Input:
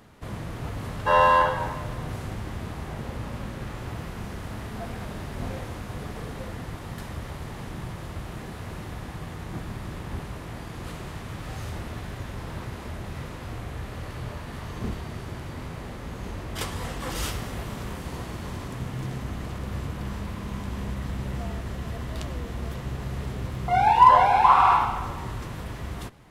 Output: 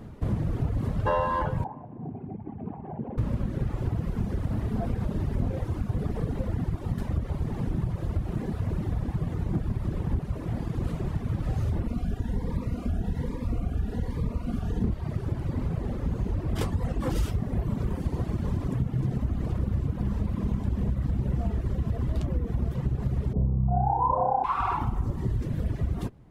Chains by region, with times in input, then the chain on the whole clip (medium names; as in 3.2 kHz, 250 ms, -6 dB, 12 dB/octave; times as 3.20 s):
1.64–3.18 s: resonances exaggerated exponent 1.5 + cabinet simulation 260–2400 Hz, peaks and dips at 330 Hz -4 dB, 540 Hz -6 dB, 800 Hz +7 dB, 1.3 kHz -9 dB, 1.9 kHz -7 dB
11.87–14.84 s: comb 4.2 ms, depth 51% + Shepard-style phaser rising 1.2 Hz
23.33–24.44 s: steep low-pass 1.1 kHz + flutter echo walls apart 5.3 m, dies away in 1.2 s
whole clip: reverb removal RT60 1.7 s; tilt shelf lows +9 dB, about 660 Hz; compression 5:1, threshold -28 dBFS; trim +5 dB